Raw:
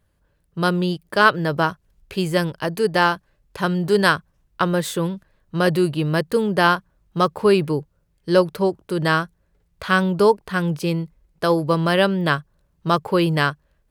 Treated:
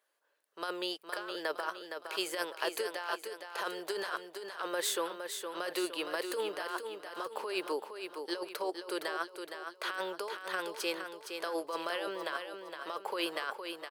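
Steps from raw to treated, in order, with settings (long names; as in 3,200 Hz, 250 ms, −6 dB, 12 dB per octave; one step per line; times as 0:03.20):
Bessel high-pass filter 630 Hz, order 6
compressor whose output falls as the input rises −27 dBFS, ratio −1
repeating echo 464 ms, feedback 45%, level −7 dB
level −8.5 dB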